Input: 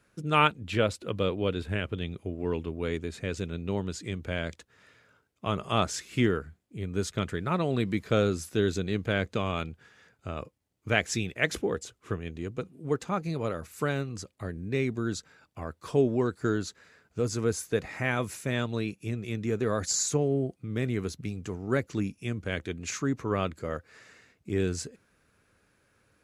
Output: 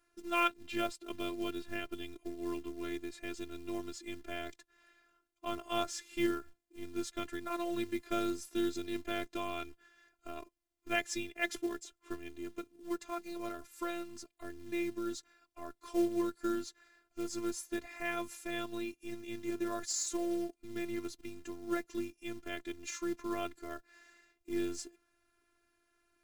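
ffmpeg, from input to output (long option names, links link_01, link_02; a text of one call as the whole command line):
ffmpeg -i in.wav -af "acrusher=bits=5:mode=log:mix=0:aa=0.000001,afftfilt=real='hypot(re,im)*cos(PI*b)':imag='0':win_size=512:overlap=0.75,volume=-4dB" out.wav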